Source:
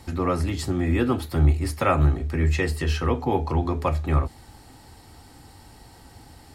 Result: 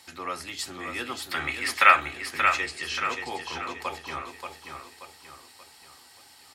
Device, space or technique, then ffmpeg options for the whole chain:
filter by subtraction: -filter_complex "[0:a]asettb=1/sr,asplit=3[link_01][link_02][link_03];[link_01]atrim=end=1.314[link_04];[link_02]atrim=start=1.31:end=2,asetpts=PTS-STARTPTS,afade=type=in:duration=0.004:curve=qsin,afade=type=out:start_time=0.686:duration=0.004:curve=qsin,equalizer=frequency=1900:width_type=o:width=2.1:gain=15[link_05];[link_03]atrim=start=1.996[link_06];[link_04][link_05]acrossfade=duration=0.004:curve1=hsin:curve2=qsin[link_07];[link_07][link_06]acrossfade=duration=0.004:curve1=qsin:curve2=hsin,asettb=1/sr,asplit=3[link_08][link_09][link_10];[link_08]atrim=end=2.664[link_11];[link_09]atrim=start=2.66:end=3.14,asetpts=PTS-STARTPTS,afade=type=in:duration=0.004:curve=qsin,afade=type=out:start_time=0.476:duration=0.004:curve=qsin,lowpass=frequency=8500:width=0.5412,lowpass=frequency=8500:width=1.3066[link_12];[link_10]atrim=start=3.136[link_13];[link_11][link_12]acrossfade=duration=0.004:curve1=hsin:curve2=qsin[link_14];[link_14][link_13]acrossfade=duration=0.004:curve1=qsin:curve2=hsin,asplit=2[link_15][link_16];[link_16]lowpass=3000,volume=-1[link_17];[link_15][link_17]amix=inputs=2:normalize=0,aecho=1:1:581|1162|1743|2324|2905:0.501|0.21|0.0884|0.0371|0.0156"

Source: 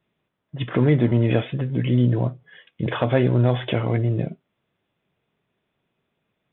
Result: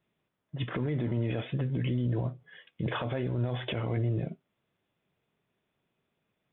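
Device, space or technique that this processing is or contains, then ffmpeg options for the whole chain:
stacked limiters: -af "alimiter=limit=-13dB:level=0:latency=1:release=201,alimiter=limit=-18.5dB:level=0:latency=1:release=19,volume=-4.5dB"

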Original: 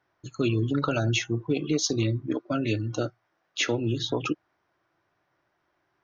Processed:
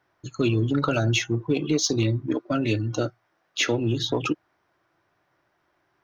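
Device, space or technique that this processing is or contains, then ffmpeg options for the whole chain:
parallel distortion: -filter_complex "[0:a]asplit=2[link_01][link_02];[link_02]asoftclip=type=hard:threshold=-30.5dB,volume=-13.5dB[link_03];[link_01][link_03]amix=inputs=2:normalize=0,volume=2dB"

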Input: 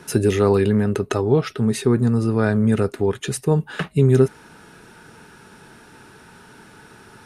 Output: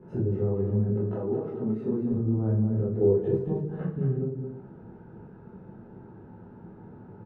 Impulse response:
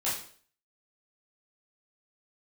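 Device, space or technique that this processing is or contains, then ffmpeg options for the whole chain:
television next door: -filter_complex "[0:a]asettb=1/sr,asplit=3[link_01][link_02][link_03];[link_01]atrim=end=0.894[link_04];[link_02]atrim=start=0.89:end=2.12,asetpts=PTS-STARTPTS,afade=type=in:duration=0.004:curve=qsin,afade=type=out:start_time=1.226:duration=0.004:curve=qsin,highpass=240[link_05];[link_03]atrim=start=2.116[link_06];[link_04][link_05]acrossfade=duration=0.004:curve1=hsin:curve2=qsin[link_07];[link_07][link_06]acrossfade=duration=0.004:curve1=qsin:curve2=hsin,acompressor=threshold=-26dB:ratio=6,lowpass=410[link_08];[1:a]atrim=start_sample=2205[link_09];[link_08][link_09]afir=irnorm=-1:irlink=0,asettb=1/sr,asplit=3[link_10][link_11][link_12];[link_10]atrim=end=2.964[link_13];[link_11]atrim=start=2.96:end=3.37,asetpts=PTS-STARTPTS,afade=type=in:duration=0.004:curve=qsin,afade=type=out:start_time=0.406:duration=0.004:curve=qsin,equalizer=frequency=450:width_type=o:width=0.88:gain=14[link_14];[link_12]atrim=start=3.366[link_15];[link_13][link_14]acrossfade=duration=0.004:curve1=hsin:curve2=qsin[link_16];[link_16][link_15]acrossfade=duration=0.004:curve1=qsin:curve2=hsin,aecho=1:1:219|313:0.447|0.178,volume=-2.5dB"

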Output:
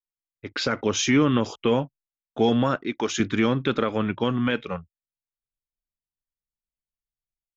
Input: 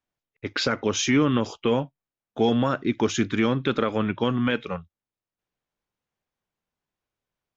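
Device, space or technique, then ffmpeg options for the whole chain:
voice memo with heavy noise removal: -filter_complex "[0:a]asettb=1/sr,asplit=3[link_01][link_02][link_03];[link_01]atrim=end=2.764[link_04];[link_02]atrim=start=2.76:end=3.2,asetpts=PTS-STARTPTS,afade=type=in:duration=0.004:curve=qsin,afade=type=out:start_time=0.436:duration=0.004:curve=qsin,highpass=frequency=470:poles=1[link_05];[link_03]atrim=start=3.196[link_06];[link_04][link_05]acrossfade=duration=0.004:curve1=hsin:curve2=qsin[link_07];[link_07][link_06]acrossfade=duration=0.004:curve1=qsin:curve2=hsin,anlmdn=0.01,dynaudnorm=framelen=390:gausssize=3:maxgain=12dB,volume=-8dB"

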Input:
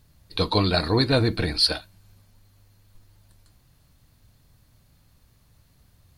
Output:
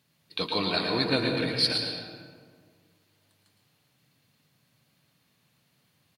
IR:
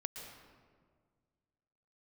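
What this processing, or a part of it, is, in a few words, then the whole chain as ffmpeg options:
PA in a hall: -filter_complex "[0:a]highpass=frequency=140:width=0.5412,highpass=frequency=140:width=1.3066,equalizer=frequency=2700:width_type=o:width=1.3:gain=7,aecho=1:1:112:0.376[link_01];[1:a]atrim=start_sample=2205[link_02];[link_01][link_02]afir=irnorm=-1:irlink=0,volume=-5dB"

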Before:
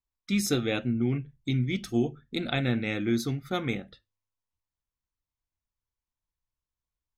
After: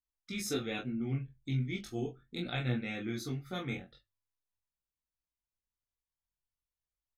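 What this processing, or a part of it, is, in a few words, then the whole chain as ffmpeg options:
double-tracked vocal: -filter_complex "[0:a]asplit=2[link_01][link_02];[link_02]adelay=23,volume=-4.5dB[link_03];[link_01][link_03]amix=inputs=2:normalize=0,flanger=delay=16.5:depth=5.3:speed=0.39,volume=-5.5dB"

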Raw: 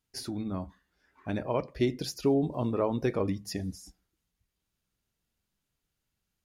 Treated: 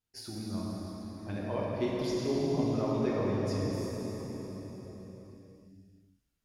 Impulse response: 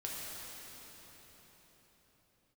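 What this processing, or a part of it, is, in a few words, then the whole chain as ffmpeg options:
cathedral: -filter_complex "[1:a]atrim=start_sample=2205[link_01];[0:a][link_01]afir=irnorm=-1:irlink=0,asettb=1/sr,asplit=3[link_02][link_03][link_04];[link_02]atrim=end=2.074[link_05];[link_03]atrim=start=2.07:end=3.73,asetpts=PTS-STARTPTS,afade=type=in:duration=0.004:curve=qsin,afade=type=out:start_time=1.656:duration=0.004:curve=qsin,lowpass=8700[link_06];[link_04]atrim=start=3.726[link_07];[link_05][link_06]acrossfade=duration=0.004:curve1=hsin:curve2=qsin[link_08];[link_08][link_07]acrossfade=duration=0.004:curve1=qsin:curve2=hsin,volume=-3.5dB"

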